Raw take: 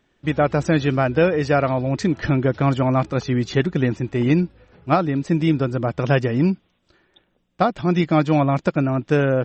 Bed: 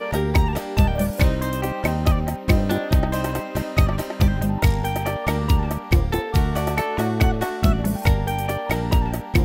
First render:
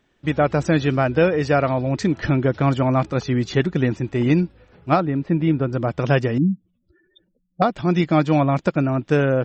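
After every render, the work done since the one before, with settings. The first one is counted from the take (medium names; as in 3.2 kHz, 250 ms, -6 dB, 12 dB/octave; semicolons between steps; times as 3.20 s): 5.00–5.73 s: distance through air 350 m; 6.38–7.62 s: spectral contrast enhancement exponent 3.3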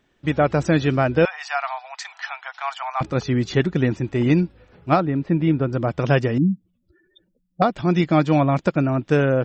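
1.25–3.01 s: Chebyshev high-pass 730 Hz, order 6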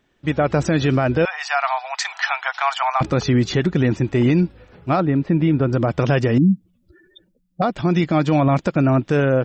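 level rider gain up to 11.5 dB; peak limiter -9 dBFS, peak gain reduction 8 dB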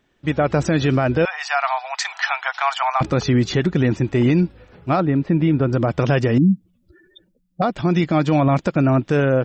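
no audible change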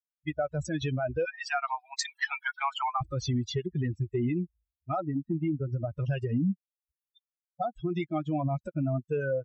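expander on every frequency bin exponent 3; compression 3:1, threshold -28 dBFS, peak gain reduction 10.5 dB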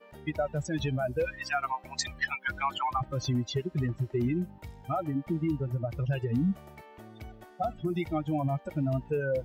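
add bed -27 dB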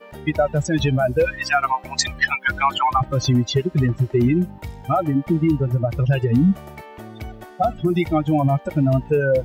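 trim +11.5 dB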